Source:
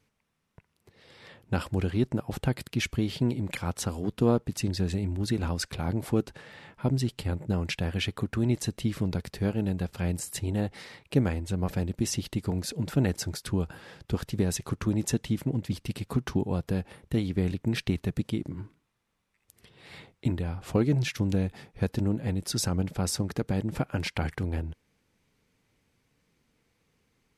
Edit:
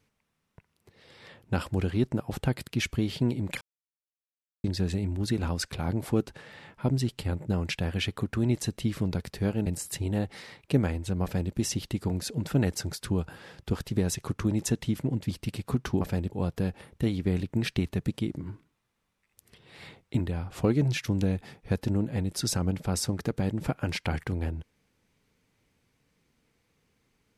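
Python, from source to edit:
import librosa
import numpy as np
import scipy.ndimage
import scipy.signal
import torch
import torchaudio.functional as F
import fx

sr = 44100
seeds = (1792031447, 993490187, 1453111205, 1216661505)

y = fx.edit(x, sr, fx.silence(start_s=3.61, length_s=1.03),
    fx.cut(start_s=9.66, length_s=0.42),
    fx.duplicate(start_s=11.65, length_s=0.31, to_s=16.43), tone=tone)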